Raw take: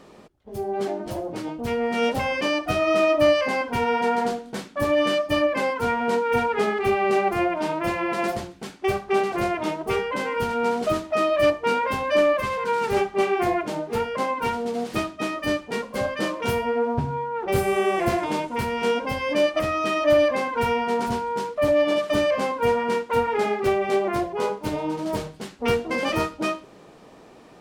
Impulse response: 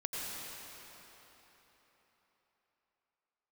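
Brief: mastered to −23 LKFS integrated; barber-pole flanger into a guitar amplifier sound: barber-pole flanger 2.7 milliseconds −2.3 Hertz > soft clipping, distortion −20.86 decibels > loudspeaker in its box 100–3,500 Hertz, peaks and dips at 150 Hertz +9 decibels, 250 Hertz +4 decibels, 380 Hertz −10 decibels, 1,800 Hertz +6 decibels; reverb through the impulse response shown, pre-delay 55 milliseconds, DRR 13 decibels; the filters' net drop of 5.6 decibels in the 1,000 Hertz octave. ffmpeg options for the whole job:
-filter_complex "[0:a]equalizer=frequency=1000:width_type=o:gain=-7.5,asplit=2[link_01][link_02];[1:a]atrim=start_sample=2205,adelay=55[link_03];[link_02][link_03]afir=irnorm=-1:irlink=0,volume=-16.5dB[link_04];[link_01][link_04]amix=inputs=2:normalize=0,asplit=2[link_05][link_06];[link_06]adelay=2.7,afreqshift=-2.3[link_07];[link_05][link_07]amix=inputs=2:normalize=1,asoftclip=threshold=-16.5dB,highpass=100,equalizer=frequency=150:width_type=q:width=4:gain=9,equalizer=frequency=250:width_type=q:width=4:gain=4,equalizer=frequency=380:width_type=q:width=4:gain=-10,equalizer=frequency=1800:width_type=q:width=4:gain=6,lowpass=frequency=3500:width=0.5412,lowpass=frequency=3500:width=1.3066,volume=6.5dB"

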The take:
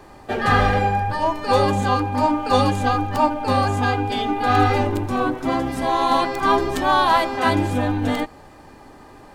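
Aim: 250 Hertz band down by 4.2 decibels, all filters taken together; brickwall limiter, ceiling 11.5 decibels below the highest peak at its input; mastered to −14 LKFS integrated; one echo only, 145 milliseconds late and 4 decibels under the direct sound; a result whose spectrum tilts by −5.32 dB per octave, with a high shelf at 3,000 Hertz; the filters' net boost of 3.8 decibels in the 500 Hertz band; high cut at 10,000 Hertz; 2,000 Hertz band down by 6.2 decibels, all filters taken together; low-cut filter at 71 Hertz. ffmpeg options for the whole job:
ffmpeg -i in.wav -af "highpass=71,lowpass=10000,equalizer=frequency=250:width_type=o:gain=-7.5,equalizer=frequency=500:width_type=o:gain=7,equalizer=frequency=2000:width_type=o:gain=-7,highshelf=frequency=3000:gain=-5.5,alimiter=limit=-13dB:level=0:latency=1,aecho=1:1:145:0.631,volume=7.5dB" out.wav

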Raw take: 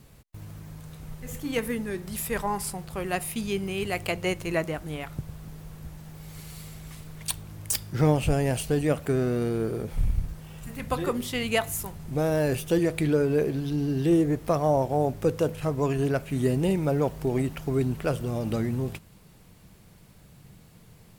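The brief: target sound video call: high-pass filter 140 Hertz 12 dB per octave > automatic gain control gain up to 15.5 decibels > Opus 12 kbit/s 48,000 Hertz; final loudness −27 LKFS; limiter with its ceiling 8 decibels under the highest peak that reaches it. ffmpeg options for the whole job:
ffmpeg -i in.wav -af "alimiter=limit=-18.5dB:level=0:latency=1,highpass=140,dynaudnorm=maxgain=15.5dB,volume=-4.5dB" -ar 48000 -c:a libopus -b:a 12k out.opus

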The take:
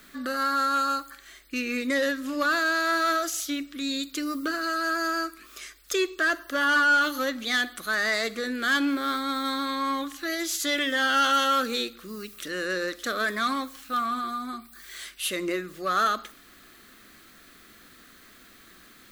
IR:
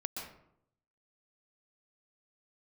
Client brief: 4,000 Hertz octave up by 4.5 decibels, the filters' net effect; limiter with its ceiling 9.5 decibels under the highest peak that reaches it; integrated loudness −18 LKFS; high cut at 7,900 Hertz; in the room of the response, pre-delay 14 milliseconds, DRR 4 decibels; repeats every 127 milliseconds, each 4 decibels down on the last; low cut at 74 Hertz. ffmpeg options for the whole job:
-filter_complex "[0:a]highpass=74,lowpass=7900,equalizer=frequency=4000:width_type=o:gain=5.5,alimiter=limit=-22dB:level=0:latency=1,aecho=1:1:127|254|381|508|635|762|889|1016|1143:0.631|0.398|0.25|0.158|0.0994|0.0626|0.0394|0.0249|0.0157,asplit=2[link_01][link_02];[1:a]atrim=start_sample=2205,adelay=14[link_03];[link_02][link_03]afir=irnorm=-1:irlink=0,volume=-5dB[link_04];[link_01][link_04]amix=inputs=2:normalize=0,volume=8dB"

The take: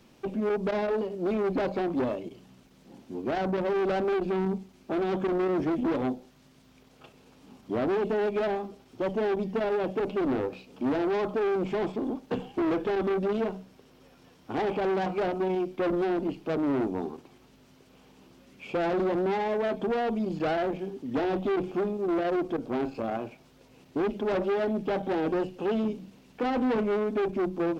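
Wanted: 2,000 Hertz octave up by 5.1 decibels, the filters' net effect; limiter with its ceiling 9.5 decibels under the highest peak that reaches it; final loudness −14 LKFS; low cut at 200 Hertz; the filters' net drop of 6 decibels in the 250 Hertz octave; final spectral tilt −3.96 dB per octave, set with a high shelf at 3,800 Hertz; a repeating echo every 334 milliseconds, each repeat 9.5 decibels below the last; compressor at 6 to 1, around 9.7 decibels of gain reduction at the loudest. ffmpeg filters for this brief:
ffmpeg -i in.wav -af "highpass=200,equalizer=frequency=250:width_type=o:gain=-7.5,equalizer=frequency=2000:width_type=o:gain=8,highshelf=frequency=3800:gain=-5,acompressor=threshold=-35dB:ratio=6,alimiter=level_in=9dB:limit=-24dB:level=0:latency=1,volume=-9dB,aecho=1:1:334|668|1002|1336:0.335|0.111|0.0365|0.012,volume=29dB" out.wav

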